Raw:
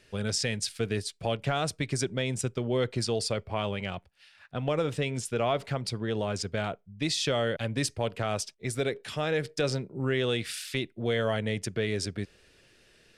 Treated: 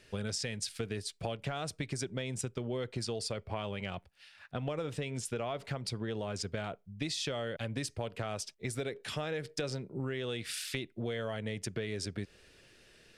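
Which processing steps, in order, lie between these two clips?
compression, threshold -33 dBFS, peak gain reduction 10 dB

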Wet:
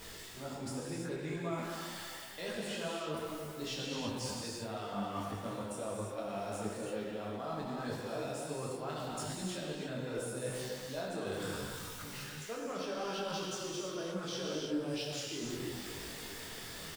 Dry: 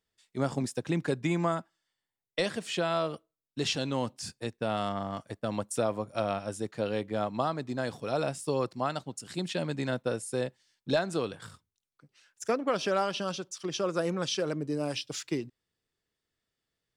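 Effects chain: jump at every zero crossing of -42.5 dBFS; reverse; compression 5:1, threshold -41 dBFS, peak gain reduction 17.5 dB; reverse; speakerphone echo 340 ms, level -9 dB; gated-style reverb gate 370 ms flat, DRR -2.5 dB; detune thickener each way 26 cents; trim +3.5 dB

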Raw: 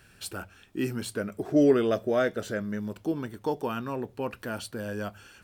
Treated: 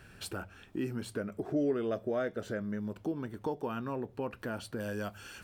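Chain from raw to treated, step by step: treble shelf 2.7 kHz -8.5 dB, from 4.80 s +2 dB; compression 2:1, threshold -43 dBFS, peak gain reduction 14.5 dB; trim +4 dB

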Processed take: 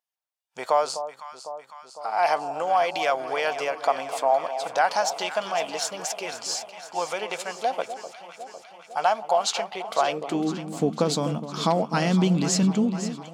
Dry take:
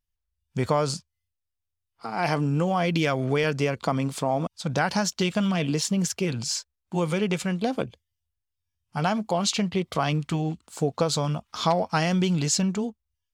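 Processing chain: echo whose repeats swap between lows and highs 252 ms, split 1 kHz, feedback 79%, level -10 dB; high-pass sweep 710 Hz -> 220 Hz, 9.93–10.60 s; trim -1 dB

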